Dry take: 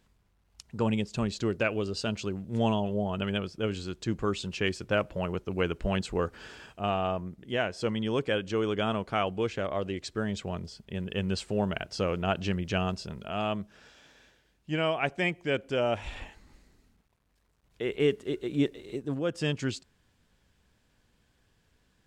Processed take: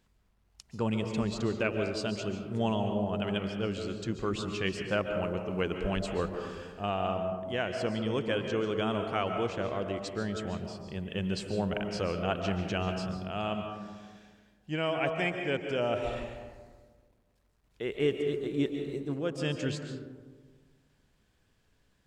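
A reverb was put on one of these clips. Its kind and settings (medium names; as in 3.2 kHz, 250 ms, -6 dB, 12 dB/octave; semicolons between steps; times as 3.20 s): algorithmic reverb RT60 1.5 s, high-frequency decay 0.3×, pre-delay 100 ms, DRR 5 dB; trim -3 dB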